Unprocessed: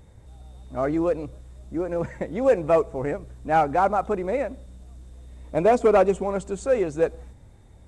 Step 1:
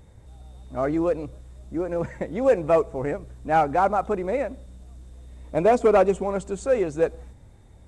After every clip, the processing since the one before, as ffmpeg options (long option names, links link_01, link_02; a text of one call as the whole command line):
ffmpeg -i in.wav -af anull out.wav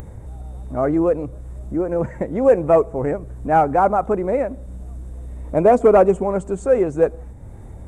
ffmpeg -i in.wav -filter_complex "[0:a]equalizer=frequency=4100:width=0.71:gain=-15,asplit=2[link_01][link_02];[link_02]acompressor=mode=upward:threshold=-26dB:ratio=2.5,volume=0dB[link_03];[link_01][link_03]amix=inputs=2:normalize=0" out.wav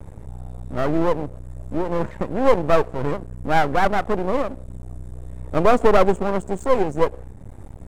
ffmpeg -i in.wav -af "aeval=exprs='max(val(0),0)':channel_layout=same,volume=2dB" out.wav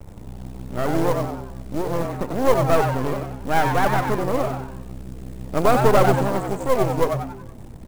ffmpeg -i in.wav -filter_complex "[0:a]acrusher=bits=5:mode=log:mix=0:aa=0.000001,asplit=2[link_01][link_02];[link_02]asplit=5[link_03][link_04][link_05][link_06][link_07];[link_03]adelay=93,afreqshift=130,volume=-5.5dB[link_08];[link_04]adelay=186,afreqshift=260,volume=-13.2dB[link_09];[link_05]adelay=279,afreqshift=390,volume=-21dB[link_10];[link_06]adelay=372,afreqshift=520,volume=-28.7dB[link_11];[link_07]adelay=465,afreqshift=650,volume=-36.5dB[link_12];[link_08][link_09][link_10][link_11][link_12]amix=inputs=5:normalize=0[link_13];[link_01][link_13]amix=inputs=2:normalize=0,volume=-2dB" out.wav